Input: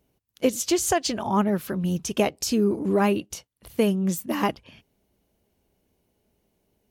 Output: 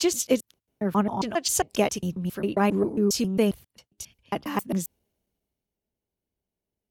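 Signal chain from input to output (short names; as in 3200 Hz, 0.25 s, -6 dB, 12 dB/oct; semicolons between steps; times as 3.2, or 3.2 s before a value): slices in reverse order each 0.135 s, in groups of 6; three-band expander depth 40%; gain -1.5 dB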